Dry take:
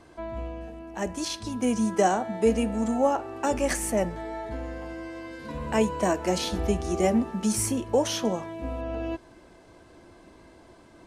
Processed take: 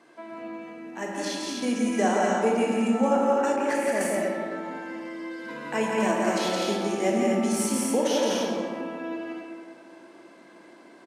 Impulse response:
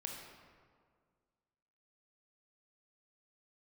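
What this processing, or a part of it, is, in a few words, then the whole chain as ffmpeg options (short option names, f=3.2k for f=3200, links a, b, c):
stadium PA: -filter_complex "[0:a]highpass=f=200:w=0.5412,highpass=f=200:w=1.3066,equalizer=f=1.9k:t=o:w=1.1:g=5,aecho=1:1:169.1|250.7:0.708|0.631[a];[1:a]atrim=start_sample=2205[b];[a][b]afir=irnorm=-1:irlink=0,asettb=1/sr,asplit=3[c][d][e];[c]atrim=end=3.564[f];[d]atrim=start=3.56:end=4.01,asetpts=PTS-STARTPTS,afade=t=in:d=0.004:c=qsin,afade=t=out:st=0.446:d=0.004:c=qsin,highshelf=f=3k:g=-9[g];[e]atrim=start=4.006[h];[f][g]acrossfade=d=0.004:c1=hsin:c2=qsin[i];[i][h]acrossfade=d=0.004:c1=qsin:c2=hsin"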